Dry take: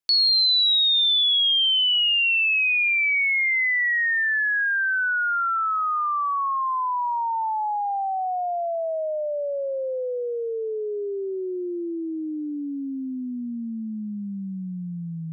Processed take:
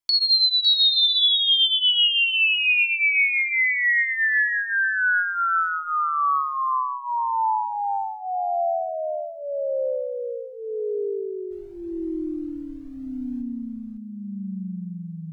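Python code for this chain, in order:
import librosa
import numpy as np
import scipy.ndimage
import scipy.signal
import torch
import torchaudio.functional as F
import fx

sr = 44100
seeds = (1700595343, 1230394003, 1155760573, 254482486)

y = fx.dmg_noise_colour(x, sr, seeds[0], colour='brown', level_db=-51.0, at=(11.5, 13.41), fade=0.02)
y = y + 10.0 ** (-7.0 / 20.0) * np.pad(y, (int(555 * sr / 1000.0), 0))[:len(y)]
y = fx.comb_cascade(y, sr, direction='rising', hz=0.66)
y = y * librosa.db_to_amplitude(4.0)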